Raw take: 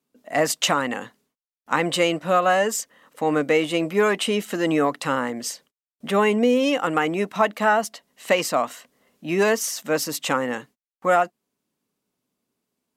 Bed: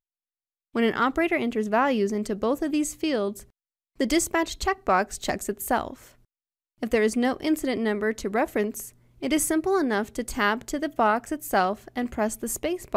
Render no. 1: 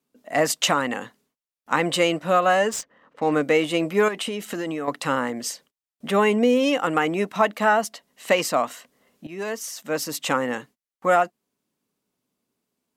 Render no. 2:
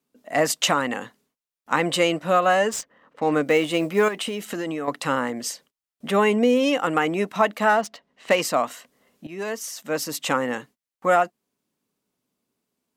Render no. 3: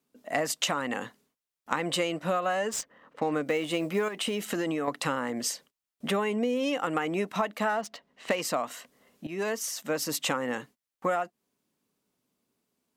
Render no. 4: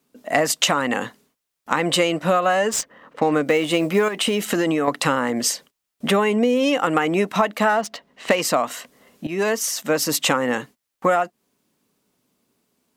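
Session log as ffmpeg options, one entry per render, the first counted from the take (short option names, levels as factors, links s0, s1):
-filter_complex "[0:a]asettb=1/sr,asplit=3[s0][s1][s2];[s0]atrim=end=2.694[s3];[s1]atrim=start=2.69:end=3.32,asetpts=PTS-STARTPTS,afade=t=in:d=0.004:c=qsin,afade=t=out:st=0.626:d=0.004:c=qsin,adynamicsmooth=sensitivity=7.5:basefreq=2100[s4];[s2]atrim=start=3.316[s5];[s3][s4]acrossfade=d=0.004:c1=hsin:c2=qsin[s6];[s6][s5]acrossfade=d=0.004:c1=qsin:c2=hsin,asettb=1/sr,asplit=3[s7][s8][s9];[s7]atrim=end=4.084[s10];[s8]atrim=start=4.08:end=4.88,asetpts=PTS-STARTPTS,afade=t=in:d=0.004:c=qsin,afade=t=out:st=0.796:d=0.004:c=qsin,acompressor=threshold=0.0631:ratio=10:attack=3.2:release=140:knee=1:detection=peak[s11];[s9]atrim=start=4.876[s12];[s10][s11]acrossfade=d=0.004:c1=hsin:c2=qsin[s13];[s13][s12]acrossfade=d=0.004:c1=qsin:c2=hsin,asplit=2[s14][s15];[s14]atrim=end=9.27,asetpts=PTS-STARTPTS,afade=t=out:st=9.266:d=0.004:c=hsin:silence=0.158489[s16];[s15]atrim=start=9.27,asetpts=PTS-STARTPTS,afade=t=in:d=1.08:silence=0.158489[s17];[s16][s17]concat=n=2:v=0:a=1"
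-filter_complex "[0:a]asettb=1/sr,asplit=3[s0][s1][s2];[s0]atrim=end=3.464[s3];[s1]atrim=start=3.46:end=4.45,asetpts=PTS-STARTPTS,afade=t=in:d=0.004:c=qsin,afade=t=out:st=0.986:d=0.004:c=qsin,acrusher=bits=8:mode=log:mix=0:aa=0.000001[s4];[s2]atrim=start=4.446[s5];[s3][s4]acrossfade=d=0.004:c1=hsin:c2=qsin[s6];[s6][s5]acrossfade=d=0.004:c1=qsin:c2=hsin,asettb=1/sr,asplit=3[s7][s8][s9];[s7]atrim=end=7.694[s10];[s8]atrim=start=7.69:end=8.36,asetpts=PTS-STARTPTS,afade=t=in:d=0.004:c=qsin,afade=t=out:st=0.666:d=0.004:c=qsin,adynamicsmooth=sensitivity=6.5:basefreq=3200[s11];[s9]atrim=start=8.356[s12];[s10][s11]acrossfade=d=0.004:c1=hsin:c2=qsin[s13];[s13][s12]acrossfade=d=0.004:c1=qsin:c2=hsin"
-af "acompressor=threshold=0.0562:ratio=6"
-af "volume=2.99,alimiter=limit=0.891:level=0:latency=1"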